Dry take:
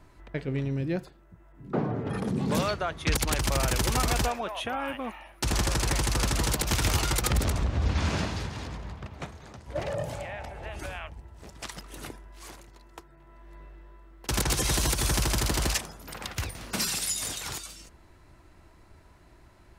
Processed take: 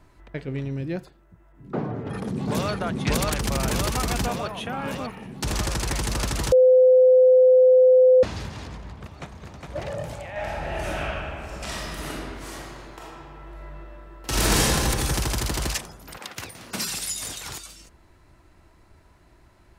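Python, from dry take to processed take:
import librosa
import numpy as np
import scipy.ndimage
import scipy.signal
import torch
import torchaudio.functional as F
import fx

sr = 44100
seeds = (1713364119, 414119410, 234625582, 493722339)

y = fx.echo_throw(x, sr, start_s=1.88, length_s=0.82, ms=590, feedback_pct=75, wet_db=-0.5)
y = fx.echo_throw(y, sr, start_s=8.9, length_s=0.81, ms=410, feedback_pct=60, wet_db=-3.0)
y = fx.reverb_throw(y, sr, start_s=10.31, length_s=4.3, rt60_s=2.4, drr_db=-9.0)
y = fx.highpass(y, sr, hz=fx.line((16.17, 270.0), (16.88, 69.0)), slope=12, at=(16.17, 16.88), fade=0.02)
y = fx.edit(y, sr, fx.bleep(start_s=6.52, length_s=1.71, hz=511.0, db=-11.0), tone=tone)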